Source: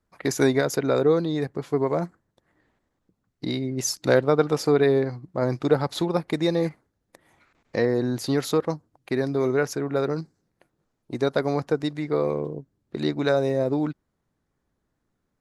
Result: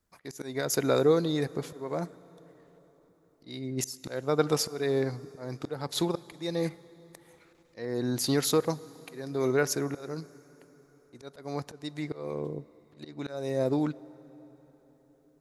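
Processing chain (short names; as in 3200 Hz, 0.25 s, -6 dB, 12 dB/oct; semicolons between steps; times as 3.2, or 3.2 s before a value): high shelf 4100 Hz +10.5 dB; auto swell 0.392 s; plate-style reverb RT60 4.7 s, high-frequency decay 0.7×, DRR 19 dB; gain -3 dB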